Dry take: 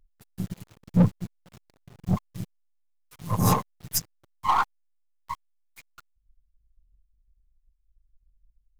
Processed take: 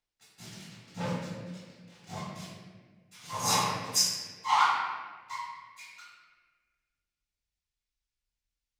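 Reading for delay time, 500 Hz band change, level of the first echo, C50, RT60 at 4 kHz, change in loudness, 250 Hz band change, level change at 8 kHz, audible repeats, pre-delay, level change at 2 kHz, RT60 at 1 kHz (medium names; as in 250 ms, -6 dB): no echo, -5.0 dB, no echo, -2.0 dB, 1.0 s, -3.5 dB, -13.0 dB, +3.5 dB, no echo, 3 ms, +4.5 dB, 1.3 s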